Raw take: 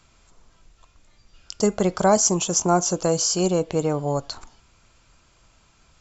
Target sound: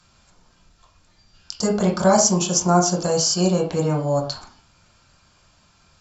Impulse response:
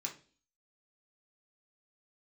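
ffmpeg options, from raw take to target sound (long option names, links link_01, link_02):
-filter_complex "[1:a]atrim=start_sample=2205,afade=type=out:start_time=0.16:duration=0.01,atrim=end_sample=7497,asetrate=29988,aresample=44100[link_01];[0:a][link_01]afir=irnorm=-1:irlink=0"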